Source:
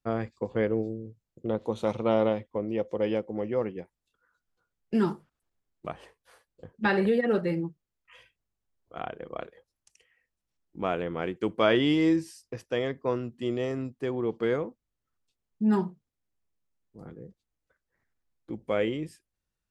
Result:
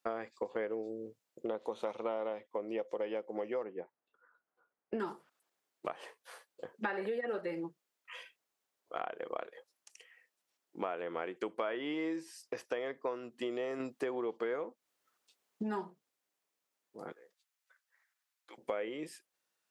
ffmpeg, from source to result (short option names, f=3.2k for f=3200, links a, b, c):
-filter_complex "[0:a]asettb=1/sr,asplit=3[a][b][c];[a]atrim=end=3.634[d];[b]atrim=start=3.63:end=5,asetpts=PTS-STARTPTS,afade=t=in:d=0.004:c=qsin,afade=t=out:st=1.366:d=0.004:c=qsin,lowpass=1.4k[e];[c]atrim=start=4.996[f];[d][e]acrossfade=d=0.004:c1=hsin:c2=qsin[g];[g][f]acrossfade=d=0.004:c1=qsin:c2=hsin,asettb=1/sr,asplit=3[h][i][j];[h]atrim=end=17.124[k];[i]atrim=start=17.12:end=18.58,asetpts=PTS-STARTPTS,afade=t=in:d=0.004:c=qsin,afade=t=out:st=1.456:d=0.004:c=qsin,highpass=1.2k[l];[j]atrim=start=18.576[m];[k][l]acrossfade=d=0.004:c1=hsin:c2=qsin[n];[n][m]acrossfade=d=0.004:c1=qsin:c2=hsin,asplit=3[o][p][q];[o]atrim=end=13.802[r];[p]atrim=start=13.798:end=15.632,asetpts=PTS-STARTPTS,volume=4.5dB[s];[q]atrim=start=15.628[t];[r][s]acrossfade=d=0.004:c1=hsin:c2=hsin[u];[u][t]acrossfade=d=0.004:c1=hsin:c2=hsin,acrossover=split=2600[v][w];[w]acompressor=threshold=-53dB:ratio=4:attack=1:release=60[x];[v][x]amix=inputs=2:normalize=0,highpass=460,acompressor=threshold=-41dB:ratio=6,volume=6.5dB"